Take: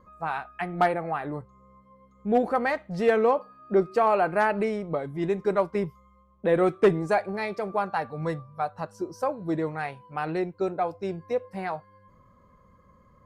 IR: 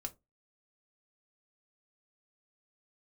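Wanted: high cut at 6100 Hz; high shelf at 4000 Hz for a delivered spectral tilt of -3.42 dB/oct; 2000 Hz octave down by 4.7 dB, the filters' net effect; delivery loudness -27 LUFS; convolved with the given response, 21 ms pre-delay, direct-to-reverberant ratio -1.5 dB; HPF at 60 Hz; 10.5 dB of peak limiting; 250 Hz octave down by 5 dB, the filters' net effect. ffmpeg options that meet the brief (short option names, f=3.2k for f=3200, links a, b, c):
-filter_complex "[0:a]highpass=60,lowpass=6.1k,equalizer=f=250:t=o:g=-8,equalizer=f=2k:t=o:g=-7,highshelf=f=4k:g=5,alimiter=limit=-22dB:level=0:latency=1,asplit=2[a][b];[1:a]atrim=start_sample=2205,adelay=21[c];[b][c]afir=irnorm=-1:irlink=0,volume=3.5dB[d];[a][d]amix=inputs=2:normalize=0,volume=2.5dB"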